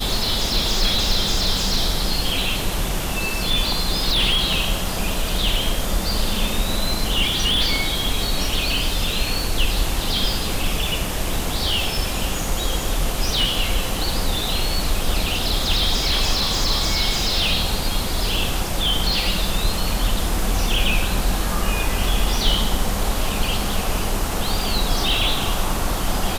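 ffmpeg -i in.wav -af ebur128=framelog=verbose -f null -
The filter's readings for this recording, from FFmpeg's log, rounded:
Integrated loudness:
  I:         -21.2 LUFS
  Threshold: -31.2 LUFS
Loudness range:
  LRA:         2.3 LU
  Threshold: -41.3 LUFS
  LRA low:   -22.3 LUFS
  LRA high:  -20.1 LUFS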